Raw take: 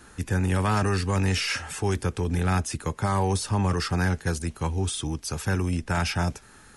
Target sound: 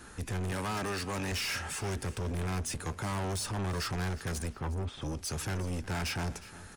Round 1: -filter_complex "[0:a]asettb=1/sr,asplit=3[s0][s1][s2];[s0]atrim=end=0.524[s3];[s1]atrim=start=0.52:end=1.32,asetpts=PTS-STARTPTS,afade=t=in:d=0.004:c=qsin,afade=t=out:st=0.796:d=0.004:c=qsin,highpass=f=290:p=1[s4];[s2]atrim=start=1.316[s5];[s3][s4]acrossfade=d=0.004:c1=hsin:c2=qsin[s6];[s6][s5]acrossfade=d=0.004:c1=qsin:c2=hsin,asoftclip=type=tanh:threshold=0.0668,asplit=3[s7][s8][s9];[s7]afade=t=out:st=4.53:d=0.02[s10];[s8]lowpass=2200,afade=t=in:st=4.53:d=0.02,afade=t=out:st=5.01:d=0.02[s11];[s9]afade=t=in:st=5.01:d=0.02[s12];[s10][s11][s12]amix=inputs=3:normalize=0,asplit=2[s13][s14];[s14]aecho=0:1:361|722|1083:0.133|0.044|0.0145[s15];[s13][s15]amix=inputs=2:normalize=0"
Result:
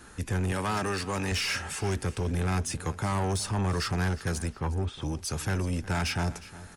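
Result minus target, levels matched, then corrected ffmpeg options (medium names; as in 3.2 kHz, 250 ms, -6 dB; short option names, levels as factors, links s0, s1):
saturation: distortion -6 dB
-filter_complex "[0:a]asettb=1/sr,asplit=3[s0][s1][s2];[s0]atrim=end=0.524[s3];[s1]atrim=start=0.52:end=1.32,asetpts=PTS-STARTPTS,afade=t=in:d=0.004:c=qsin,afade=t=out:st=0.796:d=0.004:c=qsin,highpass=f=290:p=1[s4];[s2]atrim=start=1.316[s5];[s3][s4]acrossfade=d=0.004:c1=hsin:c2=qsin[s6];[s6][s5]acrossfade=d=0.004:c1=qsin:c2=hsin,asoftclip=type=tanh:threshold=0.0266,asplit=3[s7][s8][s9];[s7]afade=t=out:st=4.53:d=0.02[s10];[s8]lowpass=2200,afade=t=in:st=4.53:d=0.02,afade=t=out:st=5.01:d=0.02[s11];[s9]afade=t=in:st=5.01:d=0.02[s12];[s10][s11][s12]amix=inputs=3:normalize=0,asplit=2[s13][s14];[s14]aecho=0:1:361|722|1083:0.133|0.044|0.0145[s15];[s13][s15]amix=inputs=2:normalize=0"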